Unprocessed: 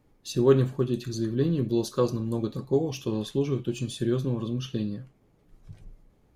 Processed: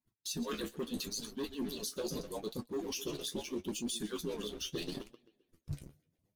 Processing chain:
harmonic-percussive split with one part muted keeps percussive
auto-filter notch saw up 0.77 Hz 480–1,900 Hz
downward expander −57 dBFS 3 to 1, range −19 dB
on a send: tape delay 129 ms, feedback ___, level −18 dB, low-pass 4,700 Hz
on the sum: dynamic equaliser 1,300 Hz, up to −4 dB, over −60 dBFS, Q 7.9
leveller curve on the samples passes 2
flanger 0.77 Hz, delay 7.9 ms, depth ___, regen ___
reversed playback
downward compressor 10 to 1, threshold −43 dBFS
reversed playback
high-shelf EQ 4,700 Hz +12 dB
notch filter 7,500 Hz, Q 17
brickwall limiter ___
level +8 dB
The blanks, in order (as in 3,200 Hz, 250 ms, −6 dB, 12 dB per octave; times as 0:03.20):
61%, 7.1 ms, +46%, −37 dBFS